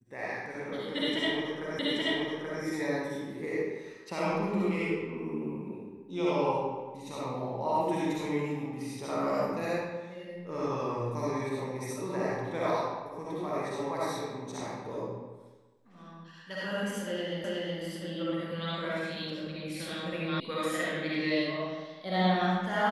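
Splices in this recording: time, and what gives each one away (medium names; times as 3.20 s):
1.79 s: repeat of the last 0.83 s
17.44 s: repeat of the last 0.37 s
20.40 s: sound stops dead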